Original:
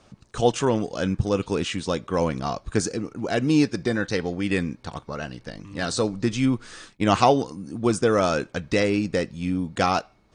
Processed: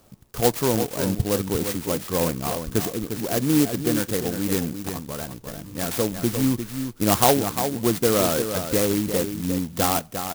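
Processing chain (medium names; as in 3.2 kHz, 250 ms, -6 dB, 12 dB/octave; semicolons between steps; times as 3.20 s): on a send: delay 351 ms -8 dB; on the sum: sampling jitter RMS 0.13 ms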